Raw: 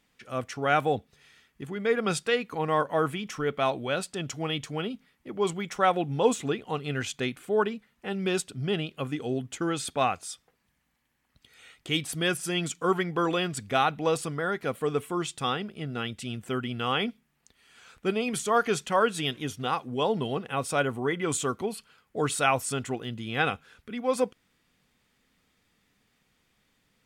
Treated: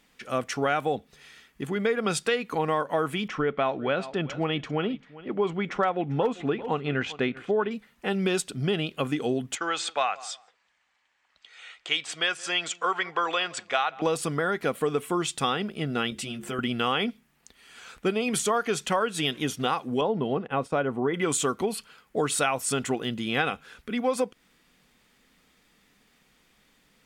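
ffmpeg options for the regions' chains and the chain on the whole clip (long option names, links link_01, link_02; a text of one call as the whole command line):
ffmpeg -i in.wav -filter_complex "[0:a]asettb=1/sr,asplit=3[link_01][link_02][link_03];[link_01]atrim=end=3.284[link_04];[link_02]atrim=start=3.28:end=7.71,asetpts=PTS-STARTPTS,afade=type=in:duration=0.004:curve=qsin,afade=type=out:start_time=4.426:duration=0.004:curve=qsin,lowpass=2600,asoftclip=type=hard:threshold=-13dB,aecho=1:1:394:0.1,atrim=end_sample=195363[link_05];[link_03]atrim=start=7.706[link_06];[link_04][link_05]acrossfade=duration=0.004:curve1=hsin:curve2=qsin[link_07];[link_07][link_06]acrossfade=duration=0.004:curve1=qsin:curve2=hsin,asettb=1/sr,asplit=3[link_08][link_09][link_10];[link_08]atrim=end=9.554[link_11];[link_09]atrim=start=9.55:end=14.02,asetpts=PTS-STARTPTS,afade=type=in:duration=0.004:curve=qsin,afade=type=out:start_time=4.466:duration=0.004:curve=qsin,lowpass=frequency=7700:width_type=q:width=3.1,acrossover=split=560 4700:gain=0.0891 1 0.0794[link_12][link_13][link_14];[link_12][link_13][link_14]amix=inputs=3:normalize=0,asplit=2[link_15][link_16];[link_16]adelay=170,lowpass=frequency=1300:poles=1,volume=-21.5dB,asplit=2[link_17][link_18];[link_18]adelay=170,lowpass=frequency=1300:poles=1,volume=0.23[link_19];[link_15][link_17][link_19]amix=inputs=3:normalize=0,atrim=end_sample=197127[link_20];[link_10]atrim=start=14.016[link_21];[link_11][link_20]acrossfade=duration=0.004:curve1=hsin:curve2=qsin[link_22];[link_22][link_21]acrossfade=duration=0.004:curve1=qsin:curve2=hsin,asettb=1/sr,asplit=3[link_23][link_24][link_25];[link_23]atrim=end=16.104[link_26];[link_24]atrim=start=16.1:end=16.59,asetpts=PTS-STARTPTS,afade=type=in:duration=0.004:curve=qsin,afade=type=out:start_time=0.486:duration=0.004:curve=qsin,bandreject=frequency=50:width_type=h:width=6,bandreject=frequency=100:width_type=h:width=6,bandreject=frequency=150:width_type=h:width=6,bandreject=frequency=200:width_type=h:width=6,bandreject=frequency=250:width_type=h:width=6,bandreject=frequency=300:width_type=h:width=6,bandreject=frequency=350:width_type=h:width=6,bandreject=frequency=400:width_type=h:width=6,bandreject=frequency=450:width_type=h:width=6,acompressor=threshold=-38dB:ratio=2.5:attack=3.2:release=140:knee=1:detection=peak,asplit=2[link_27][link_28];[link_28]adelay=14,volume=-6dB[link_29];[link_27][link_29]amix=inputs=2:normalize=0,atrim=end_sample=21609[link_30];[link_25]atrim=start=16.586[link_31];[link_26][link_30]acrossfade=duration=0.004:curve1=hsin:curve2=qsin[link_32];[link_32][link_31]acrossfade=duration=0.004:curve1=qsin:curve2=hsin,asettb=1/sr,asplit=3[link_33][link_34][link_35];[link_33]atrim=end=20.014[link_36];[link_34]atrim=start=20.01:end=21.14,asetpts=PTS-STARTPTS,afade=type=in:duration=0.004:curve=qsin,afade=type=out:start_time=1.126:duration=0.004:curve=qsin,lowpass=frequency=1100:poles=1,agate=range=-33dB:threshold=-41dB:ratio=3:release=100:detection=peak[link_37];[link_35]atrim=start=21.136[link_38];[link_36][link_37]acrossfade=duration=0.004:curve1=hsin:curve2=qsin[link_39];[link_39][link_38]acrossfade=duration=0.004:curve1=qsin:curve2=hsin,equalizer=frequency=100:width_type=o:width=0.55:gain=-13.5,acompressor=threshold=-29dB:ratio=6,volume=7dB" out.wav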